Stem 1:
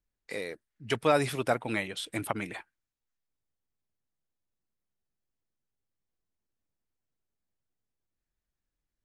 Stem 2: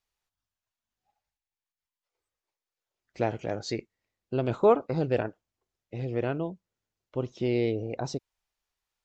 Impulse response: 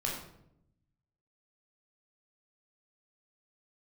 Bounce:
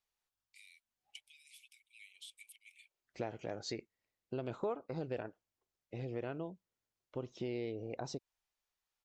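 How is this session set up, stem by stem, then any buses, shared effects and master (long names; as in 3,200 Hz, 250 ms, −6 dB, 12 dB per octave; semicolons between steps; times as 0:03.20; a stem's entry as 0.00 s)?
−12.5 dB, 0.25 s, no send, downward compressor 5 to 1, threshold −32 dBFS, peak gain reduction 12.5 dB; Chebyshev high-pass with heavy ripple 2,200 Hz, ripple 3 dB
−4.5 dB, 0.00 s, no send, low-shelf EQ 170 Hz −5 dB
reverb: not used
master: downward compressor 3 to 1, threshold −38 dBFS, peak gain reduction 13 dB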